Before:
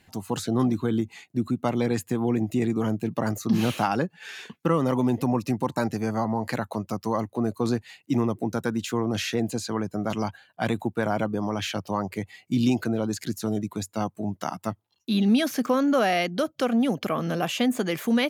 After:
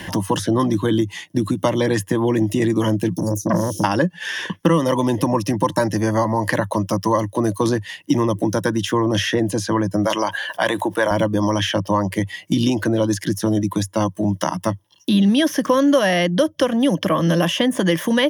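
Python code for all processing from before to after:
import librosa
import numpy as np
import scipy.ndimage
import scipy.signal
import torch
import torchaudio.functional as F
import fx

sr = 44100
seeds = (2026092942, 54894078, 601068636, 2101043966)

y = fx.chain(x, sr, fx.cheby1_bandstop(low_hz=350.0, high_hz=5700.0, order=3),
    fx.transformer_sat(knee_hz=690.0), at=(3.15, 3.84))
y = fx.chain(y, sr, fx.highpass(hz=480.0, slope=12),
    fx.env_flatten(amount_pct=50), at=(10.05, 11.11))
y = fx.ripple_eq(y, sr, per_octave=1.2, db=11)
y = fx.band_squash(y, sr, depth_pct=70)
y = y * 10.0 ** (6.5 / 20.0)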